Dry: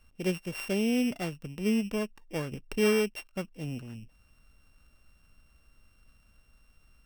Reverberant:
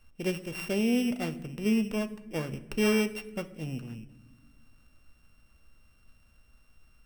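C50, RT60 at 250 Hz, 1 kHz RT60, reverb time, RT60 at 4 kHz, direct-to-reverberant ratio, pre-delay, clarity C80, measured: 15.0 dB, 2.1 s, 0.80 s, 1.1 s, 0.65 s, 10.0 dB, 8 ms, 17.5 dB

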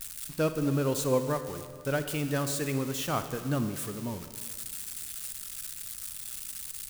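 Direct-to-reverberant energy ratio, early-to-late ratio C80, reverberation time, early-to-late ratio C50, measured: 9.0 dB, 10.5 dB, 1.8 s, 9.5 dB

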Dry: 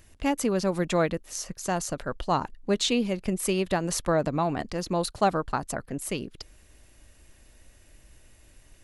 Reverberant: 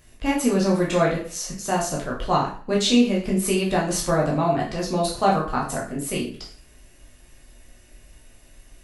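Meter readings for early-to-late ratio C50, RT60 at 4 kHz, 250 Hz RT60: 6.0 dB, 0.40 s, 0.45 s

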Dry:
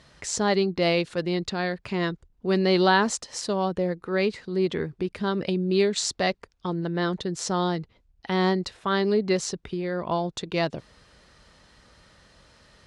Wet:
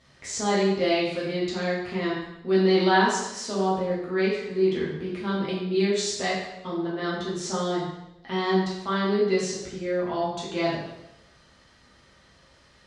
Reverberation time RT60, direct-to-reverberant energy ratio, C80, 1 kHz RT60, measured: 0.90 s, -8.0 dB, 4.5 dB, 0.85 s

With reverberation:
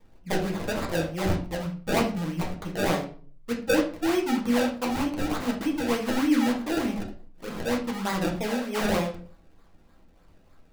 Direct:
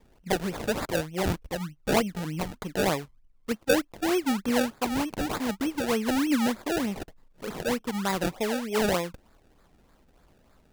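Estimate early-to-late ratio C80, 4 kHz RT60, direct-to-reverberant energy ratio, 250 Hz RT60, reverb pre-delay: 13.5 dB, 0.30 s, -1.5 dB, 0.55 s, 6 ms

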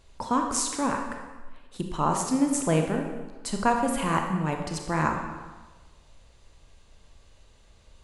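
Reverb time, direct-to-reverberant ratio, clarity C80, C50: 1.3 s, 3.0 dB, 6.5 dB, 4.5 dB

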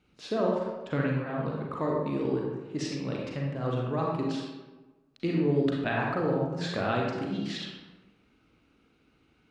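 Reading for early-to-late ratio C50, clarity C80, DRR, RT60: 0.0 dB, 3.0 dB, -2.5 dB, 1.2 s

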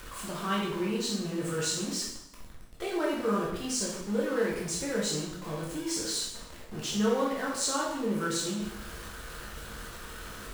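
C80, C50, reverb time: 5.5 dB, 2.0 dB, 0.80 s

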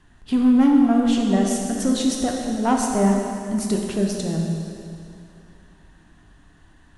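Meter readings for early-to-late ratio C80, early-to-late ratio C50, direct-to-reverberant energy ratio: 3.0 dB, 1.5 dB, 0.0 dB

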